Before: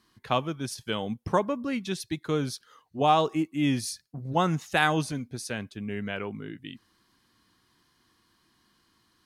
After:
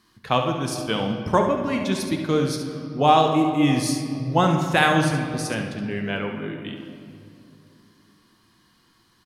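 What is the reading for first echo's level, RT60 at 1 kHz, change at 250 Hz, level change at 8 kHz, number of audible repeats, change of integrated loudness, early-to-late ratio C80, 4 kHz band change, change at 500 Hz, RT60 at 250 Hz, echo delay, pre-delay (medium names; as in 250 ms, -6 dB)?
-8.5 dB, 2.2 s, +7.0 dB, +5.5 dB, 1, +6.5 dB, 7.0 dB, +6.0 dB, +6.5 dB, 3.5 s, 70 ms, 4 ms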